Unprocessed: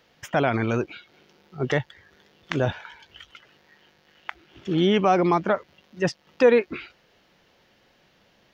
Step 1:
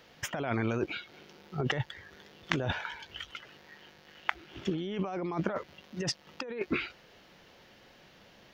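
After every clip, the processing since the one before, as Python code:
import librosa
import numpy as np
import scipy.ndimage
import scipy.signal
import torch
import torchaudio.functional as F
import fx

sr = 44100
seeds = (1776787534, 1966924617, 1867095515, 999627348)

y = fx.over_compress(x, sr, threshold_db=-29.0, ratio=-1.0)
y = y * librosa.db_to_amplitude(-3.5)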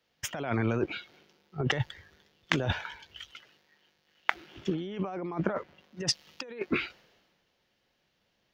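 y = fx.band_widen(x, sr, depth_pct=70)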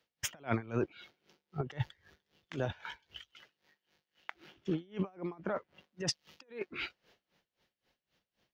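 y = x * 10.0 ** (-23 * (0.5 - 0.5 * np.cos(2.0 * np.pi * 3.8 * np.arange(len(x)) / sr)) / 20.0)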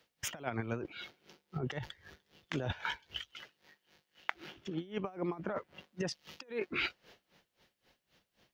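y = fx.over_compress(x, sr, threshold_db=-39.0, ratio=-1.0)
y = y * librosa.db_to_amplitude(3.5)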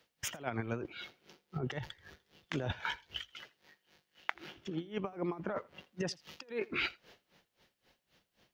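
y = x + 10.0 ** (-23.0 / 20.0) * np.pad(x, (int(83 * sr / 1000.0), 0))[:len(x)]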